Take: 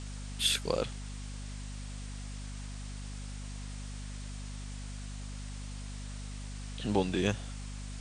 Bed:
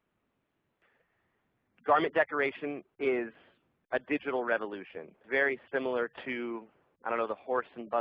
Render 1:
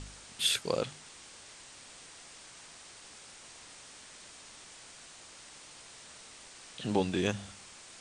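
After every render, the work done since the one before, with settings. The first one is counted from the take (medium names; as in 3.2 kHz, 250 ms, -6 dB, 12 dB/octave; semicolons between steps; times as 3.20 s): de-hum 50 Hz, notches 5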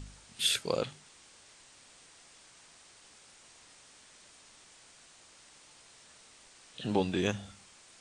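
noise print and reduce 6 dB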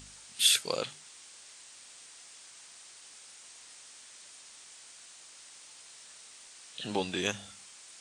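tilt EQ +2.5 dB/octave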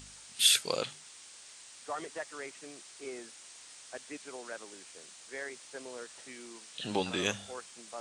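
add bed -13.5 dB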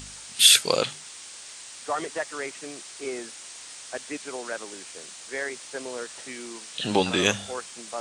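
trim +9.5 dB; peak limiter -2 dBFS, peak gain reduction 1.5 dB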